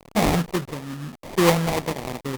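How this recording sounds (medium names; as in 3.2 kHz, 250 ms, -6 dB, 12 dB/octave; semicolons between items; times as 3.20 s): a quantiser's noise floor 6-bit, dither none; tremolo triangle 0.9 Hz, depth 65%; aliases and images of a low sample rate 1.5 kHz, jitter 20%; Opus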